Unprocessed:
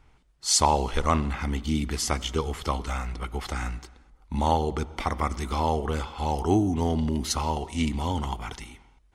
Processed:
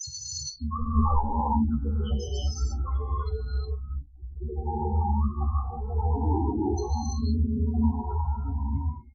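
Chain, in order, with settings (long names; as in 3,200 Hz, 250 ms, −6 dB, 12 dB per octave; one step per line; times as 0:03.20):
slices reordered back to front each 88 ms, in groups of 7
spectral peaks only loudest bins 4
ambience of single reflections 14 ms −5.5 dB, 43 ms −15.5 dB
reverb whose tail is shaped and stops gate 380 ms rising, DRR −5.5 dB
level −5 dB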